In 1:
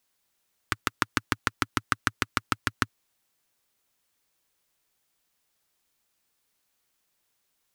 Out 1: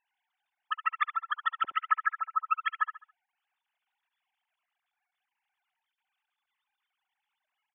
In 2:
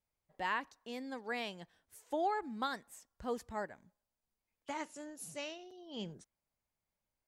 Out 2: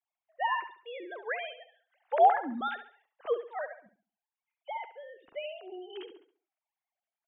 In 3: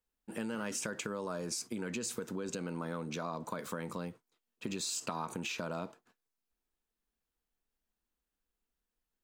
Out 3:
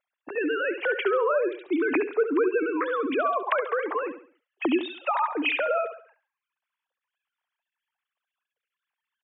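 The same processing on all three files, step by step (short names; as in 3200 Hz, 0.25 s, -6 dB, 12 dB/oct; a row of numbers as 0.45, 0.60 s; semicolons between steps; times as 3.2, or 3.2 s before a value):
sine-wave speech; on a send: feedback echo 69 ms, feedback 36%, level -11 dB; on the sum: normalise peaks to -12 dBFS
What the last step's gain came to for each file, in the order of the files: -1.5, +8.0, +13.0 dB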